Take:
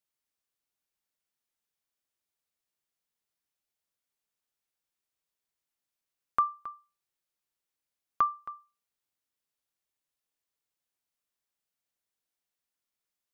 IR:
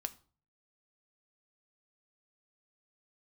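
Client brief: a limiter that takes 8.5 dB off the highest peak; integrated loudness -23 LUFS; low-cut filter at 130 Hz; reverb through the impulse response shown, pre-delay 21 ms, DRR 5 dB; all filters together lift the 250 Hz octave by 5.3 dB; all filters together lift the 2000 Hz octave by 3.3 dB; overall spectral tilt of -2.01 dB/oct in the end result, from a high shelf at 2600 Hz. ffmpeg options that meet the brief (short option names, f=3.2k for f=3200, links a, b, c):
-filter_complex "[0:a]highpass=130,equalizer=f=250:t=o:g=7,equalizer=f=2k:t=o:g=7.5,highshelf=f=2.6k:g=-7.5,alimiter=limit=-21.5dB:level=0:latency=1,asplit=2[a][b];[1:a]atrim=start_sample=2205,adelay=21[c];[b][c]afir=irnorm=-1:irlink=0,volume=-3.5dB[d];[a][d]amix=inputs=2:normalize=0,volume=9dB"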